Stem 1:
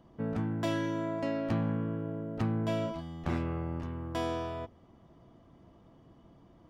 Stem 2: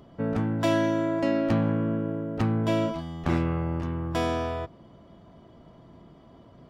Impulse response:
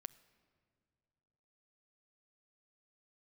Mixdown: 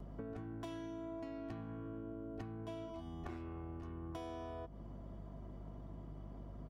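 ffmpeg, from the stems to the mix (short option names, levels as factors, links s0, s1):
-filter_complex "[0:a]volume=0.531[s0];[1:a]equalizer=f=3500:t=o:w=1.3:g=-12,acompressor=threshold=0.02:ratio=6,aeval=exprs='val(0)+0.00562*(sin(2*PI*50*n/s)+sin(2*PI*2*50*n/s)/2+sin(2*PI*3*50*n/s)/3+sin(2*PI*4*50*n/s)/4+sin(2*PI*5*50*n/s)/5)':c=same,adelay=2.7,volume=0.668[s1];[s0][s1]amix=inputs=2:normalize=0,acompressor=threshold=0.00708:ratio=6"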